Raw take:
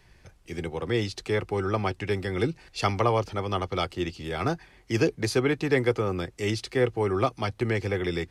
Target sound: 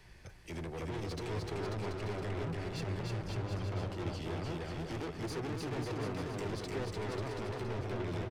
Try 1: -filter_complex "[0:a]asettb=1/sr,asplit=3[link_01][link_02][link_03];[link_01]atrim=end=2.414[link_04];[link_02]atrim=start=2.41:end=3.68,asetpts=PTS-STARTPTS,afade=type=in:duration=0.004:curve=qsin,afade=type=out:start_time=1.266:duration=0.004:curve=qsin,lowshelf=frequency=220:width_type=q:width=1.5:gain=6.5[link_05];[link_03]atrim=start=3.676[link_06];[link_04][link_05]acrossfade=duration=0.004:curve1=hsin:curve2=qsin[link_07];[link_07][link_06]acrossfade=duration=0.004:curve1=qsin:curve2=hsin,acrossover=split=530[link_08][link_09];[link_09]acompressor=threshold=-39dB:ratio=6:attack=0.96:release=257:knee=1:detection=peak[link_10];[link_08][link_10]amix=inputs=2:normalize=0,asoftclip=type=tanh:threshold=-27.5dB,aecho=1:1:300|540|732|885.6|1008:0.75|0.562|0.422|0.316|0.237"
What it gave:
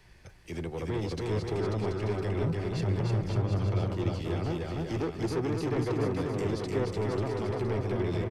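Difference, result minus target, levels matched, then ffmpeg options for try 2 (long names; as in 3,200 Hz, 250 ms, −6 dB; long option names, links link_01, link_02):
soft clipping: distortion −5 dB
-filter_complex "[0:a]asettb=1/sr,asplit=3[link_01][link_02][link_03];[link_01]atrim=end=2.414[link_04];[link_02]atrim=start=2.41:end=3.68,asetpts=PTS-STARTPTS,afade=type=in:duration=0.004:curve=qsin,afade=type=out:start_time=1.266:duration=0.004:curve=qsin,lowshelf=frequency=220:width_type=q:width=1.5:gain=6.5[link_05];[link_03]atrim=start=3.676[link_06];[link_04][link_05]acrossfade=duration=0.004:curve1=hsin:curve2=qsin[link_07];[link_07][link_06]acrossfade=duration=0.004:curve1=qsin:curve2=hsin,acrossover=split=530[link_08][link_09];[link_09]acompressor=threshold=-39dB:ratio=6:attack=0.96:release=257:knee=1:detection=peak[link_10];[link_08][link_10]amix=inputs=2:normalize=0,asoftclip=type=tanh:threshold=-38.5dB,aecho=1:1:300|540|732|885.6|1008:0.75|0.562|0.422|0.316|0.237"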